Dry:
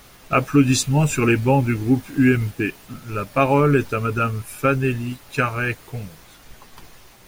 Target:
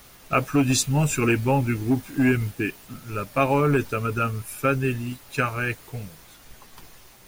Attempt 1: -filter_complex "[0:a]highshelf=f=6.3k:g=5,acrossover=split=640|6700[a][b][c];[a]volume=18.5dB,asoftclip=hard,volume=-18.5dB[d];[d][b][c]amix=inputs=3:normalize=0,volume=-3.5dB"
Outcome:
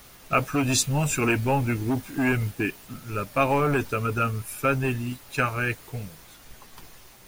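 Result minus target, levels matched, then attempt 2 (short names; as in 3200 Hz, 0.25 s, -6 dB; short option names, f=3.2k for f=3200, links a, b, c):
overloaded stage: distortion +9 dB
-filter_complex "[0:a]highshelf=f=6.3k:g=5,acrossover=split=640|6700[a][b][c];[a]volume=12dB,asoftclip=hard,volume=-12dB[d];[d][b][c]amix=inputs=3:normalize=0,volume=-3.5dB"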